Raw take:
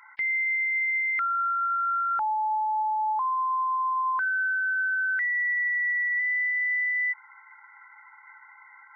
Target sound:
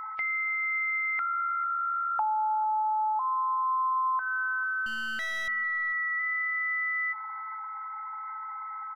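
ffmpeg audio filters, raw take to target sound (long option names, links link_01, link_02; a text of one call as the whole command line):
ffmpeg -i in.wav -filter_complex "[0:a]firequalizer=gain_entry='entry(500,0);entry(730,14);entry(1400,0)':delay=0.05:min_phase=1,aeval=exprs='val(0)+0.0224*sin(2*PI*1300*n/s)':channel_layout=same,acompressor=threshold=-25dB:ratio=6,asettb=1/sr,asplit=3[link_01][link_02][link_03];[link_01]atrim=end=4.864[link_04];[link_02]atrim=start=4.86:end=5.48,asetpts=PTS-STARTPTS,afade=type=in:duration=0.004:curve=qsin,afade=type=out:start_time=0.616:duration=0.004:curve=qsin,aeval=exprs='clip(val(0),-1,0.02)':channel_layout=same[link_05];[link_03]atrim=start=5.476[link_06];[link_04][link_05]acrossfade=duration=0.004:curve1=hsin:curve2=qsin[link_07];[link_07][link_06]acrossfade=duration=0.004:curve1=qsin:curve2=hsin,asplit=2[link_08][link_09];[link_09]adelay=444,lowpass=frequency=1200:poles=1,volume=-15dB,asplit=2[link_10][link_11];[link_11]adelay=444,lowpass=frequency=1200:poles=1,volume=0.25,asplit=2[link_12][link_13];[link_13]adelay=444,lowpass=frequency=1200:poles=1,volume=0.25[link_14];[link_08][link_10][link_12][link_14]amix=inputs=4:normalize=0,volume=-2dB" out.wav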